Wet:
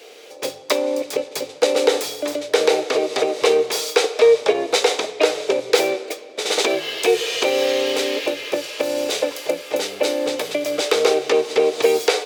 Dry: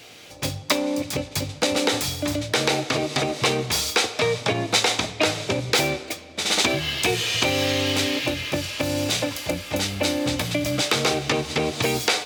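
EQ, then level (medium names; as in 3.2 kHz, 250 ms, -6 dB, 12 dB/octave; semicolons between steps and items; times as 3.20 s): resonant high-pass 440 Hz, resonance Q 4.7; -1.0 dB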